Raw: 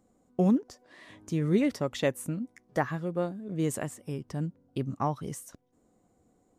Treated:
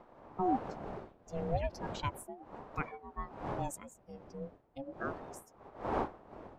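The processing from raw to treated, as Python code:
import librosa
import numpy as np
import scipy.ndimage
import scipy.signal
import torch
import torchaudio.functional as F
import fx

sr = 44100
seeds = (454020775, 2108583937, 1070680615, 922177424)

y = fx.bin_expand(x, sr, power=2.0)
y = fx.dmg_wind(y, sr, seeds[0], corner_hz=420.0, level_db=-39.0)
y = fx.ring_lfo(y, sr, carrier_hz=470.0, swing_pct=30, hz=0.35)
y = y * librosa.db_to_amplitude(-3.0)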